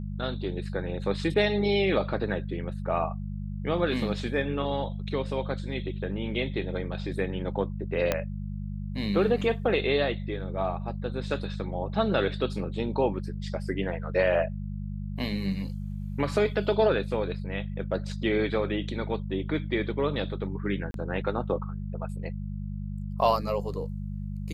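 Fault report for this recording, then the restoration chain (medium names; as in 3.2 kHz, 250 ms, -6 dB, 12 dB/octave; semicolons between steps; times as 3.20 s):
hum 50 Hz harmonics 4 -34 dBFS
8.12 s: pop -10 dBFS
20.91–20.94 s: dropout 32 ms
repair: de-click; de-hum 50 Hz, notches 4; interpolate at 20.91 s, 32 ms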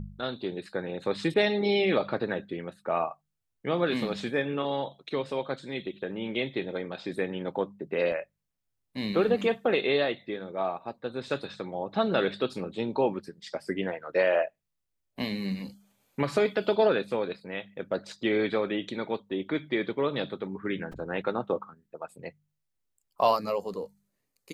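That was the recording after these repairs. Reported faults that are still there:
8.12 s: pop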